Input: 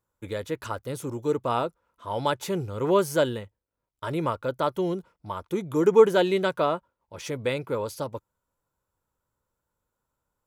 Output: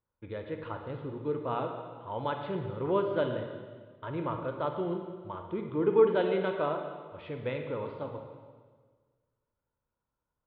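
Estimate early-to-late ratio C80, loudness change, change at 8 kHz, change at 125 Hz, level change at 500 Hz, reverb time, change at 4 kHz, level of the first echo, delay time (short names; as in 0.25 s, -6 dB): 6.5 dB, -6.0 dB, under -35 dB, -5.0 dB, -5.5 dB, 1.5 s, -11.5 dB, none, none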